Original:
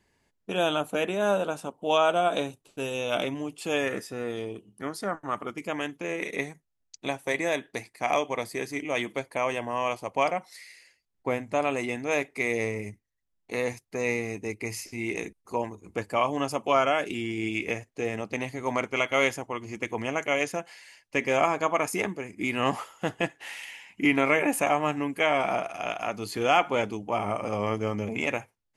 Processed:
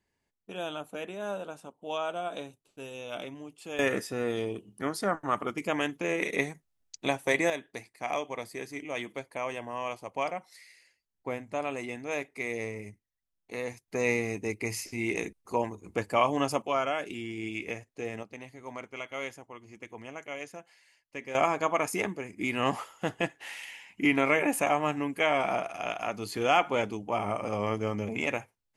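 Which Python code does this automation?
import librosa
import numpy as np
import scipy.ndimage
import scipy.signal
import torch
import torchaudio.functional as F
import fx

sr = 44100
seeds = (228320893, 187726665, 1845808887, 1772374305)

y = fx.gain(x, sr, db=fx.steps((0.0, -10.5), (3.79, 2.0), (7.5, -6.5), (13.88, 0.5), (16.62, -6.0), (18.23, -13.0), (21.35, -2.0)))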